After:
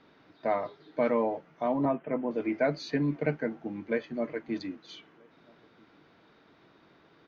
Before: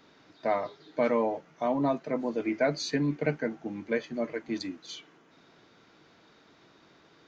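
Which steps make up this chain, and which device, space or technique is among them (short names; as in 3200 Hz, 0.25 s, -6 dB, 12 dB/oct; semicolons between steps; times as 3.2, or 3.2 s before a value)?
1.85–2.31 steep low-pass 3300 Hz 96 dB/oct; shout across a valley (air absorption 190 m; outdoor echo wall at 220 m, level -29 dB)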